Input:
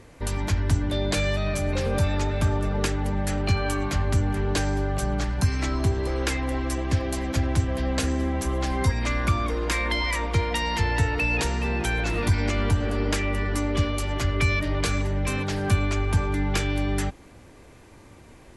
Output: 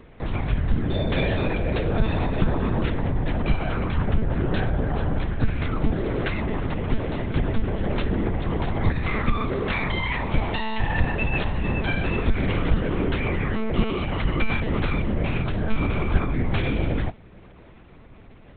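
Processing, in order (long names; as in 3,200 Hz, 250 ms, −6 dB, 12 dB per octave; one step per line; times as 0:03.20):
parametric band 170 Hz +8.5 dB 0.77 octaves
one-pitch LPC vocoder at 8 kHz 220 Hz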